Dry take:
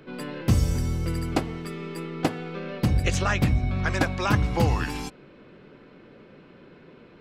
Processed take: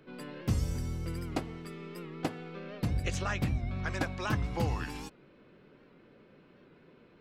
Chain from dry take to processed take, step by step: warped record 78 rpm, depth 100 cents; trim -9 dB

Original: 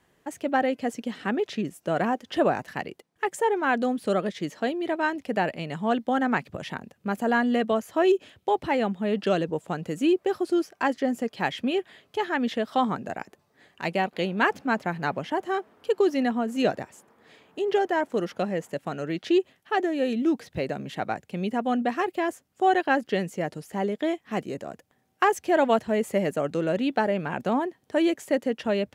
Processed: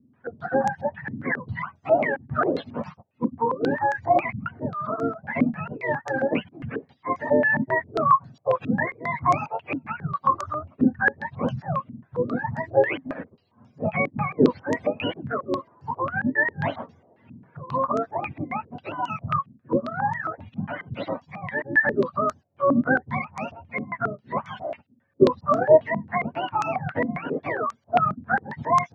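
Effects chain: spectrum inverted on a logarithmic axis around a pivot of 650 Hz; step-sequenced low-pass 7.4 Hz 270–6500 Hz

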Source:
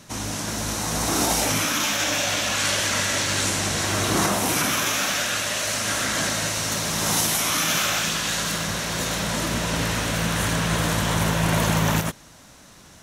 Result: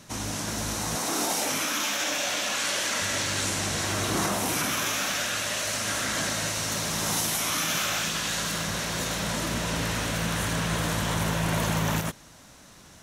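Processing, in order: 0.95–3.02 s: high-pass 230 Hz 12 dB/octave; in parallel at 0 dB: peak limiter -18.5 dBFS, peak gain reduction 9 dB; on the sum: trim -8.5 dB

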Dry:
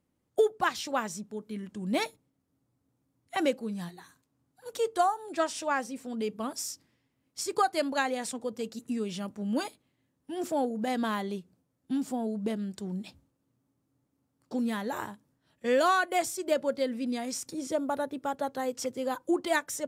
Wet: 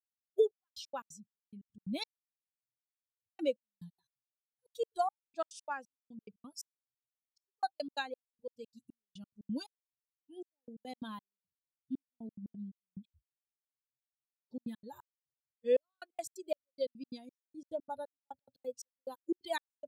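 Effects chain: expander on every frequency bin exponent 2; graphic EQ with 31 bands 500 Hz +6 dB, 2 kHz -9 dB, 4 kHz +7 dB; trance gate "x.x.xx..." 177 bpm -60 dB; trim -4.5 dB

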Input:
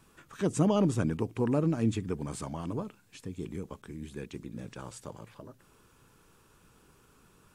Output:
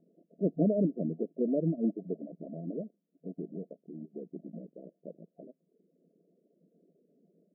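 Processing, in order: block-companded coder 3-bit; FFT band-pass 160–710 Hz; reverb removal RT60 0.73 s

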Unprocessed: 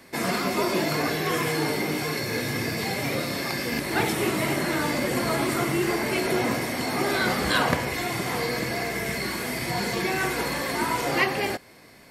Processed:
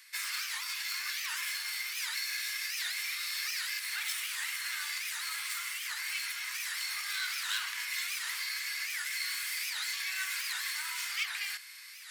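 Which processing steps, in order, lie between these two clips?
tracing distortion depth 0.05 ms; saturation -15 dBFS, distortion -22 dB; peak limiter -20 dBFS, peak gain reduction 4.5 dB; Bessel high-pass 2.3 kHz, order 8; reverse; upward compressor, threshold -40 dBFS; reverse; warped record 78 rpm, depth 250 cents

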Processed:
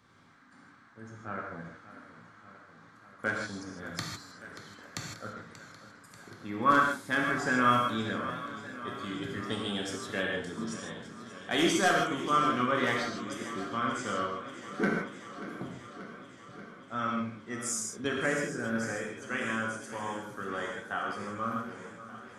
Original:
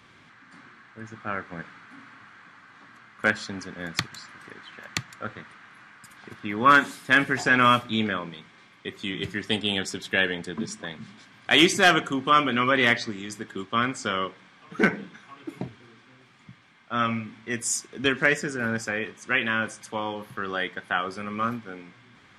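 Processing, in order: peaking EQ 2.6 kHz -9.5 dB 0.96 oct; gated-style reverb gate 180 ms flat, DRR -1 dB; modulated delay 585 ms, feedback 73%, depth 62 cents, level -14.5 dB; trim -8 dB

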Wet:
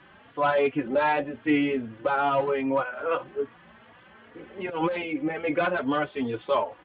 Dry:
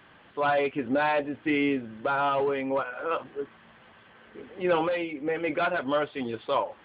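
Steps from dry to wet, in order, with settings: 4.69–5.30 s: compressor with a negative ratio -28 dBFS, ratio -0.5; distance through air 140 m; endless flanger 3.6 ms +2.5 Hz; trim +5.5 dB

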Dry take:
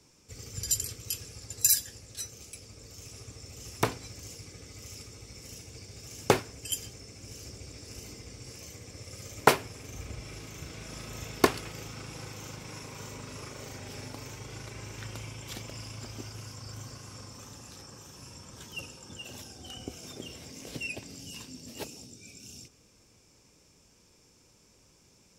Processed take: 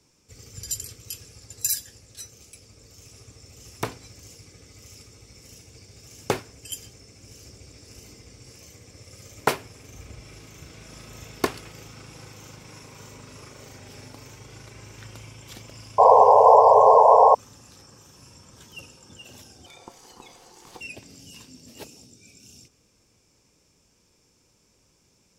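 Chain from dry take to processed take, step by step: 15.98–17.35 s: painted sound noise 420–1100 Hz -11 dBFS; 19.66–20.81 s: ring modulator 620 Hz; trim -2 dB

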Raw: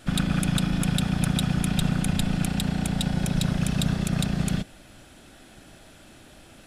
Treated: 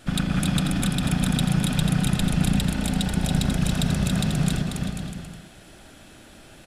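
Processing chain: 0.61–1.13 s: compressor with a negative ratio -26 dBFS, ratio -1; on a send: bouncing-ball echo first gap 280 ms, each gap 0.75×, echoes 5

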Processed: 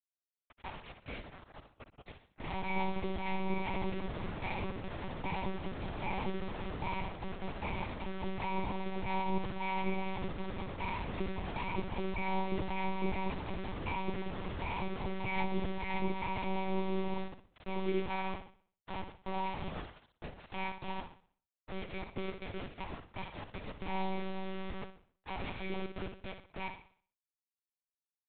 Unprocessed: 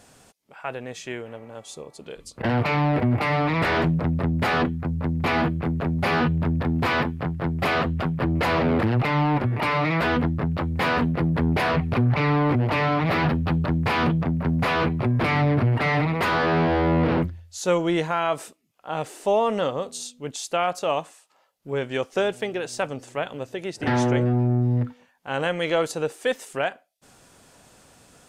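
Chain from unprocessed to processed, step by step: comb filter that takes the minimum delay 2.1 ms; vowel filter u; hum 60 Hz, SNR 11 dB; bit crusher 7-bit; flutter echo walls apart 10.9 m, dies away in 0.47 s; monotone LPC vocoder at 8 kHz 190 Hz; trim +1 dB

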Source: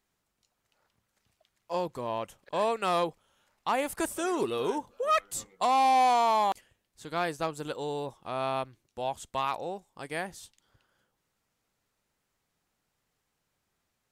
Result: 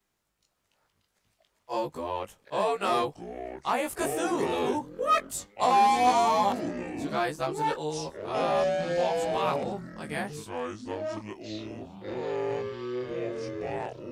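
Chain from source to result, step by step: short-time spectra conjugated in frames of 40 ms; ever faster or slower copies 407 ms, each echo -6 st, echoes 3, each echo -6 dB; trim +4 dB

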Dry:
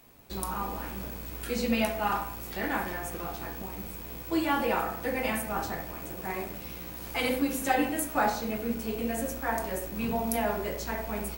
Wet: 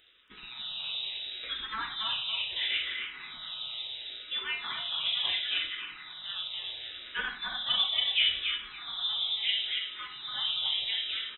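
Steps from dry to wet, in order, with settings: frequency inversion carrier 3.8 kHz; on a send: feedback delay 279 ms, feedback 40%, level -5 dB; on the sum: barber-pole phaser -0.72 Hz

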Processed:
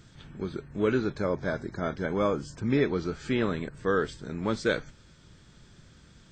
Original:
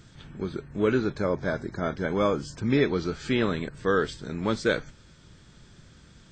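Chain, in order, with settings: 2.06–4.54 s: peaking EQ 4 kHz -4 dB 1.4 oct; trim -2 dB

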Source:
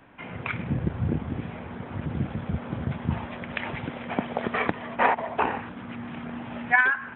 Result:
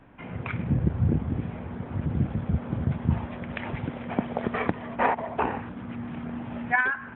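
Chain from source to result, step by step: tilt EQ -2 dB/octave; trim -2.5 dB

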